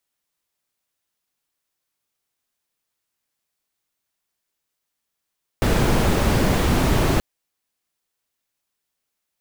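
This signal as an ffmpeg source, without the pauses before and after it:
-f lavfi -i "anoisesrc=c=brown:a=0.624:d=1.58:r=44100:seed=1"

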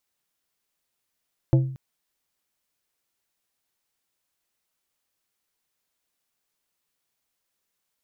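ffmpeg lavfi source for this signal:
-f lavfi -i "aevalsrc='0.251*pow(10,-3*t/0.56)*sin(2*PI*132*t)+0.119*pow(10,-3*t/0.295)*sin(2*PI*330*t)+0.0562*pow(10,-3*t/0.212)*sin(2*PI*528*t)+0.0266*pow(10,-3*t/0.182)*sin(2*PI*660*t)+0.0126*pow(10,-3*t/0.151)*sin(2*PI*858*t)':d=0.23:s=44100"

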